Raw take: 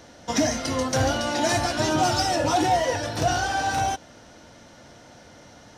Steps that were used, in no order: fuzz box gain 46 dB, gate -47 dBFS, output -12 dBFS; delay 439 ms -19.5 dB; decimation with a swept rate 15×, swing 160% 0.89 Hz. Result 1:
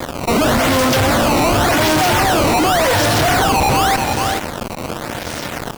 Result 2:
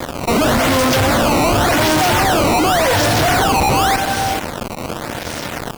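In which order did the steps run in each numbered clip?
decimation with a swept rate > delay > fuzz box; delay > decimation with a swept rate > fuzz box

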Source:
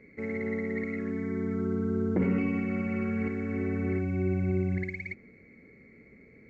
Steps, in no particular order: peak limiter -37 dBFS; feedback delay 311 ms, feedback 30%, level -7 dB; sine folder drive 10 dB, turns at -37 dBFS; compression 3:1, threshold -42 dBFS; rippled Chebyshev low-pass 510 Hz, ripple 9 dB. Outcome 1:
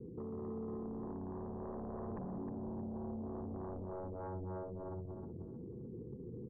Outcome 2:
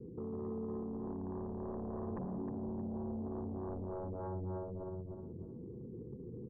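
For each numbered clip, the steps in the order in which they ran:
peak limiter > rippled Chebyshev low-pass > sine folder > compression > feedback delay; compression > peak limiter > rippled Chebyshev low-pass > sine folder > feedback delay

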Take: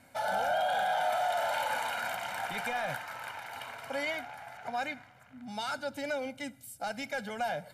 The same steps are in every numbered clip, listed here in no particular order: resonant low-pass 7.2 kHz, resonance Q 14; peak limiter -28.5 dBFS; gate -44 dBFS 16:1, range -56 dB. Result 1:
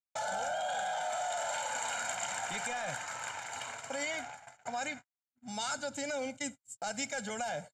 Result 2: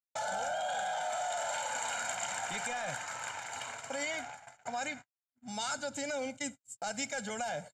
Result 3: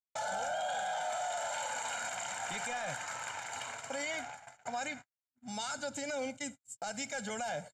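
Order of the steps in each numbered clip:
peak limiter > gate > resonant low-pass; gate > peak limiter > resonant low-pass; gate > resonant low-pass > peak limiter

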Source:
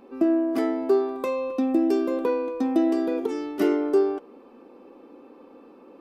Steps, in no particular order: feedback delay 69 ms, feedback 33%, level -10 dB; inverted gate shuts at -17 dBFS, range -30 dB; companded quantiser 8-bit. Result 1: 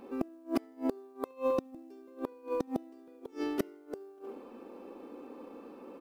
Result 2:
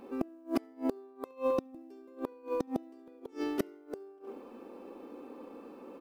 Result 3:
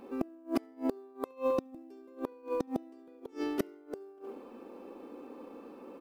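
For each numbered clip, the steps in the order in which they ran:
feedback delay > inverted gate > companded quantiser; companded quantiser > feedback delay > inverted gate; feedback delay > companded quantiser > inverted gate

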